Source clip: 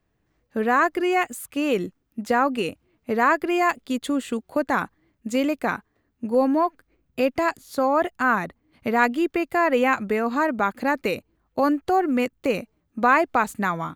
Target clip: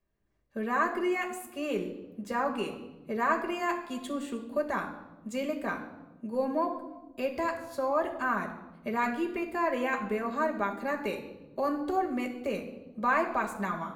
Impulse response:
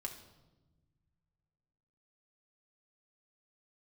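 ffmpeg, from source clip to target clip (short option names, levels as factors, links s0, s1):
-filter_complex "[1:a]atrim=start_sample=2205[s0];[0:a][s0]afir=irnorm=-1:irlink=0,volume=0.447"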